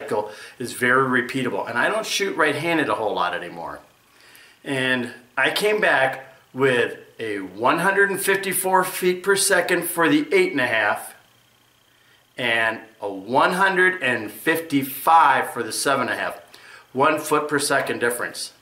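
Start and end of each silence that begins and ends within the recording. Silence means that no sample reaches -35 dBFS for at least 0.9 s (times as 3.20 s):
11.12–12.38 s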